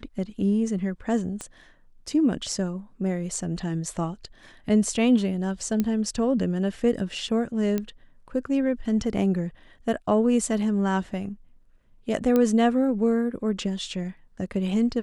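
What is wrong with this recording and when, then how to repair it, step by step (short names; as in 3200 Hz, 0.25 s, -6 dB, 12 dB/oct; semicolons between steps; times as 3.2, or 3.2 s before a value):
1.41 pop -20 dBFS
5.8 pop -12 dBFS
7.78 pop -14 dBFS
12.36 pop -11 dBFS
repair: de-click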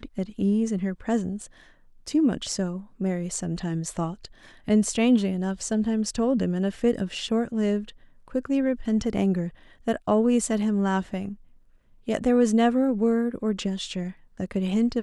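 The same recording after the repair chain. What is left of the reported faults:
1.41 pop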